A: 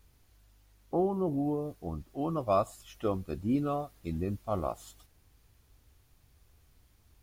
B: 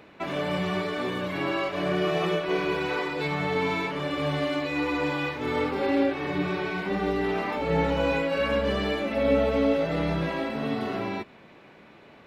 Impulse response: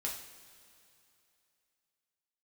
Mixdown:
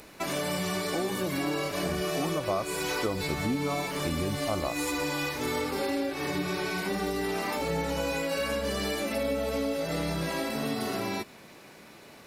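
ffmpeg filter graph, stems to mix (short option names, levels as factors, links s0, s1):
-filter_complex "[0:a]dynaudnorm=f=290:g=11:m=3.35,volume=0.841[s0];[1:a]aexciter=amount=3.7:drive=3:freq=4500,volume=1[s1];[s0][s1]amix=inputs=2:normalize=0,equalizer=f=10000:w=0.52:g=11.5,acompressor=threshold=0.0447:ratio=5"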